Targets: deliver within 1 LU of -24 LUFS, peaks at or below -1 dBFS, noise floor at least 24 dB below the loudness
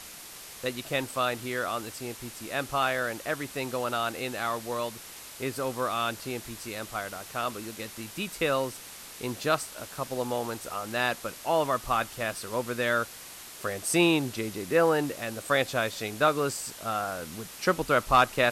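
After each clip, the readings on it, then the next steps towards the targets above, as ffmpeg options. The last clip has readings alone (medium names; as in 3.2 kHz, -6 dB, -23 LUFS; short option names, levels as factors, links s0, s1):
noise floor -45 dBFS; noise floor target -54 dBFS; loudness -29.5 LUFS; peak level -10.5 dBFS; loudness target -24.0 LUFS
-> -af "afftdn=nr=9:nf=-45"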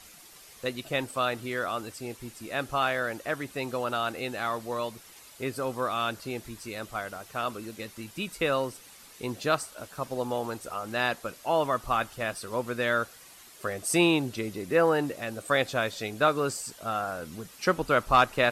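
noise floor -51 dBFS; noise floor target -54 dBFS
-> -af "afftdn=nr=6:nf=-51"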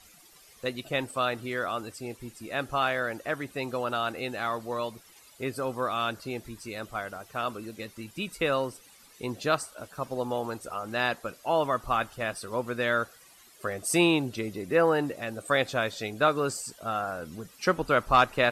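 noise floor -56 dBFS; loudness -29.5 LUFS; peak level -10.5 dBFS; loudness target -24.0 LUFS
-> -af "volume=1.88"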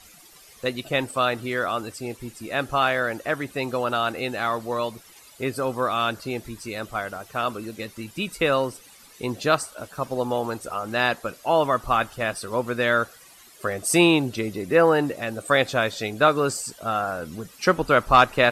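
loudness -24.0 LUFS; peak level -5.0 dBFS; noise floor -50 dBFS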